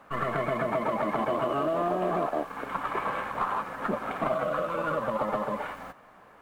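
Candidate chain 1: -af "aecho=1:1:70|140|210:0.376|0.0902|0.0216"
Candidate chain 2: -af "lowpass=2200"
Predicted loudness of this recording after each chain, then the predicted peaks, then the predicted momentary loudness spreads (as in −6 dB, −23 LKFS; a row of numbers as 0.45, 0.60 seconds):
−29.0, −30.0 LKFS; −16.5, −18.5 dBFS; 5, 6 LU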